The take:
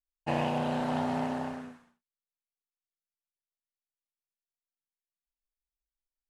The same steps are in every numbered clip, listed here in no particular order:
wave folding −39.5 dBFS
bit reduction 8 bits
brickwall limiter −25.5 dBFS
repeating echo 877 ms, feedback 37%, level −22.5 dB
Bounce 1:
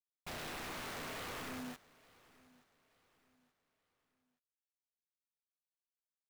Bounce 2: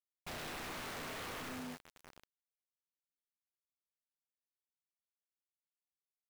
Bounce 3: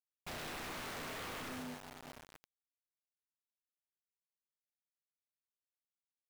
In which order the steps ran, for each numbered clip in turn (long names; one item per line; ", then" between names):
brickwall limiter, then wave folding, then bit reduction, then repeating echo
brickwall limiter, then repeating echo, then wave folding, then bit reduction
repeating echo, then brickwall limiter, then wave folding, then bit reduction